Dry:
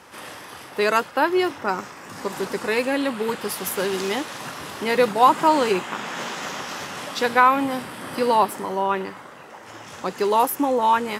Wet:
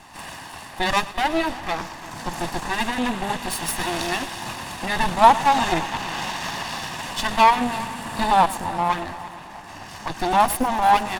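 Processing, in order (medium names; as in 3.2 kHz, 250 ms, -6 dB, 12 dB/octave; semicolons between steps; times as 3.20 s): comb filter that takes the minimum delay 0.98 ms; dynamic bell 3.8 kHz, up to +3 dB, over -43 dBFS, Q 2.7; pitch shift -2 st; multi-head delay 114 ms, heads first and third, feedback 59%, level -18.5 dB; trim +3 dB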